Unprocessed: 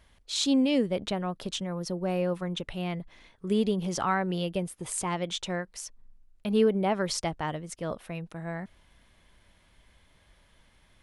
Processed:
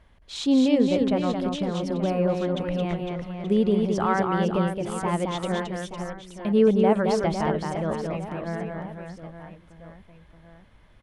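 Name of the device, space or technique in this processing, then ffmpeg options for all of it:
through cloth: -af "highshelf=frequency=3200:gain=-15,aecho=1:1:220|506|877.8|1361|1989:0.631|0.398|0.251|0.158|0.1,volume=4.5dB"

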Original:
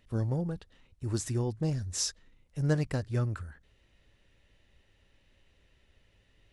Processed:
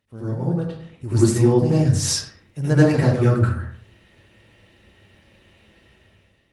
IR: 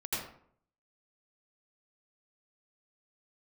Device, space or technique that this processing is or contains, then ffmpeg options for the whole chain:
far-field microphone of a smart speaker: -filter_complex "[1:a]atrim=start_sample=2205[link_01];[0:a][link_01]afir=irnorm=-1:irlink=0,highpass=93,dynaudnorm=framelen=190:gausssize=7:maxgain=12.5dB" -ar 48000 -c:a libopus -b:a 32k

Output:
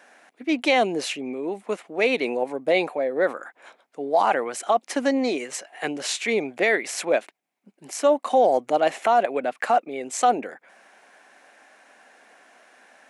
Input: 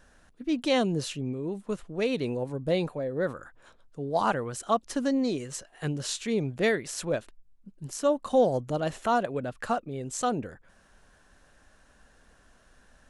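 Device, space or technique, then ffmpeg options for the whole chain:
laptop speaker: -af "highpass=frequency=260:width=0.5412,highpass=frequency=260:width=1.3066,equalizer=frequency=750:width_type=o:width=0.59:gain=9.5,equalizer=frequency=2200:width_type=o:width=0.56:gain=12,alimiter=limit=-14.5dB:level=0:latency=1:release=18,volume=4.5dB"

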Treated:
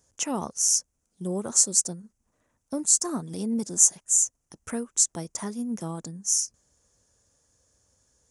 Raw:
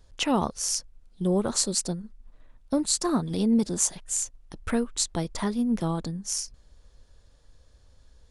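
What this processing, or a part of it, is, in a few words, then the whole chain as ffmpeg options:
budget condenser microphone: -af "highpass=110,highshelf=frequency=5100:width_type=q:width=3:gain=8,volume=-5.5dB"

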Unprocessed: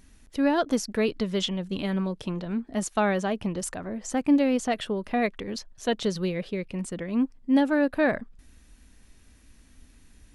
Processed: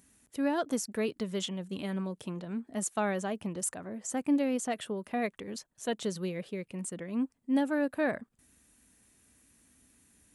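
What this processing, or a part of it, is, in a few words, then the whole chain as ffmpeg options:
budget condenser microphone: -af "highpass=110,highshelf=frequency=6400:width_type=q:width=1.5:gain=7,volume=-6.5dB"

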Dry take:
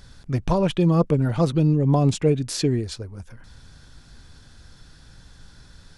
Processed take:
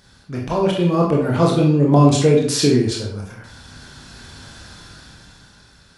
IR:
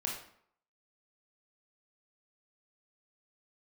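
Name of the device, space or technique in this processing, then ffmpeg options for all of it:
far laptop microphone: -filter_complex "[1:a]atrim=start_sample=2205[link_01];[0:a][link_01]afir=irnorm=-1:irlink=0,highpass=frequency=180:poles=1,dynaudnorm=framelen=200:gausssize=11:maxgain=12dB"

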